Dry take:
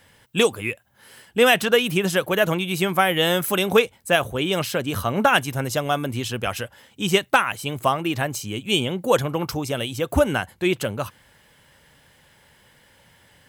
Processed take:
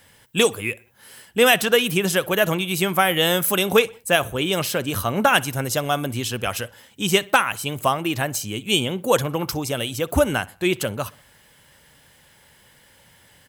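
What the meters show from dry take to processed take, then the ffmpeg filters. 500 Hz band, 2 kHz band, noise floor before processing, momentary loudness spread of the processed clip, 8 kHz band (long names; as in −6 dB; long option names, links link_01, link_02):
0.0 dB, +1.0 dB, −57 dBFS, 10 LU, +4.5 dB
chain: -filter_complex "[0:a]highshelf=frequency=5200:gain=6.5,asplit=2[link_01][link_02];[link_02]adelay=62,lowpass=frequency=3900:poles=1,volume=-22dB,asplit=2[link_03][link_04];[link_04]adelay=62,lowpass=frequency=3900:poles=1,volume=0.46,asplit=2[link_05][link_06];[link_06]adelay=62,lowpass=frequency=3900:poles=1,volume=0.46[link_07];[link_03][link_05][link_07]amix=inputs=3:normalize=0[link_08];[link_01][link_08]amix=inputs=2:normalize=0"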